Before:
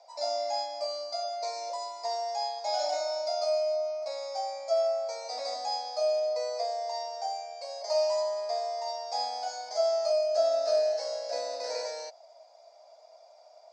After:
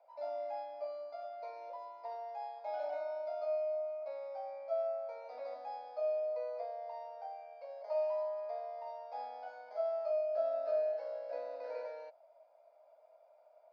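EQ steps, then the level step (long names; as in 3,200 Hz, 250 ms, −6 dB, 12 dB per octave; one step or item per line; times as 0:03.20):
loudspeaker in its box 310–2,200 Hz, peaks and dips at 400 Hz −6 dB, 740 Hz −9 dB, 1,100 Hz −6 dB, 1,900 Hz −10 dB
−3.0 dB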